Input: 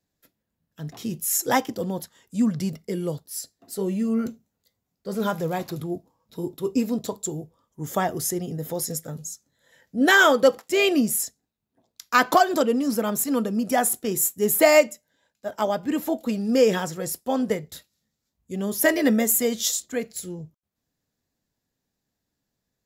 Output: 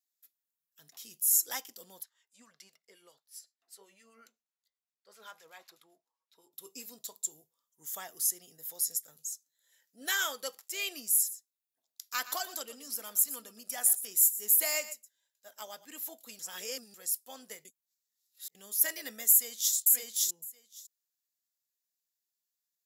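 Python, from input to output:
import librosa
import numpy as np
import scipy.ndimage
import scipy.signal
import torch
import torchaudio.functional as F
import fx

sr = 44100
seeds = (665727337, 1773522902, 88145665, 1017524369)

y = fx.filter_lfo_bandpass(x, sr, shape='sine', hz=7.8, low_hz=820.0, high_hz=2000.0, q=0.79, at=(2.02, 6.52), fade=0.02)
y = fx.echo_single(y, sr, ms=119, db=-14.5, at=(11.11, 15.85))
y = fx.echo_throw(y, sr, start_s=19.3, length_s=0.44, ms=560, feedback_pct=10, wet_db=-1.0)
y = fx.edit(y, sr, fx.reverse_span(start_s=16.39, length_s=0.55),
    fx.reverse_span(start_s=17.65, length_s=0.9), tone=tone)
y = np.diff(y, prepend=0.0)
y = y * 10.0 ** (-3.0 / 20.0)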